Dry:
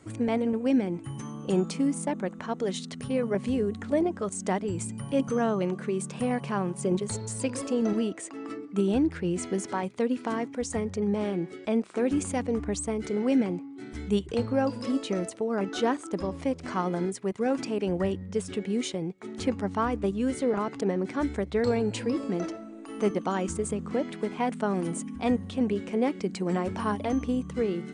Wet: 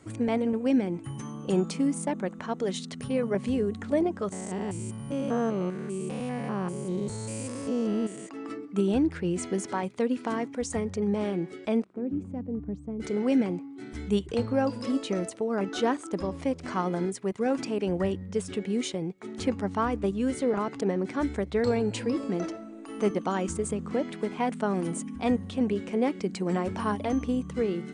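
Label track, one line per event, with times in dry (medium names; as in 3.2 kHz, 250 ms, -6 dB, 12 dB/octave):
4.320000	8.290000	spectrogram pixelated in time every 200 ms
11.840000	13.000000	band-pass filter 150 Hz, Q 1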